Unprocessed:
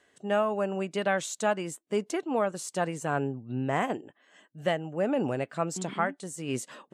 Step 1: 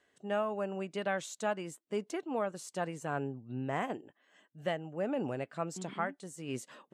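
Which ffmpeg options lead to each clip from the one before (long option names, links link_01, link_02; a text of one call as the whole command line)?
ffmpeg -i in.wav -af "equalizer=frequency=8600:width_type=o:width=0.94:gain=-3,volume=-6.5dB" out.wav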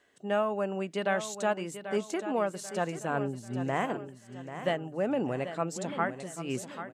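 ffmpeg -i in.wav -af "bandreject=frequency=50:width_type=h:width=6,bandreject=frequency=100:width_type=h:width=6,bandreject=frequency=150:width_type=h:width=6,aecho=1:1:789|1578|2367|3156:0.282|0.113|0.0451|0.018,volume=4.5dB" out.wav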